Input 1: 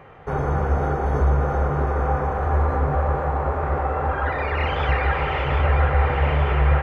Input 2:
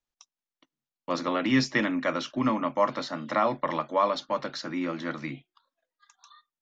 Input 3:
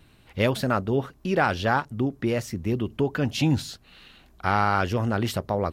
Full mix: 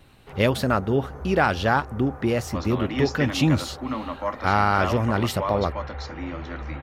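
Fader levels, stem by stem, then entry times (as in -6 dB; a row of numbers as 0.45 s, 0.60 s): -17.0 dB, -4.0 dB, +2.0 dB; 0.00 s, 1.45 s, 0.00 s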